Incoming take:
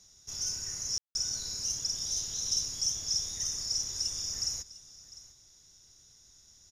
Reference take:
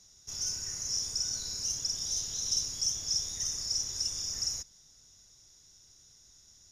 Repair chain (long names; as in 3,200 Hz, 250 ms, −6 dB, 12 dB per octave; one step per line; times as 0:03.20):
ambience match 0:00.98–0:01.15
echo removal 701 ms −18 dB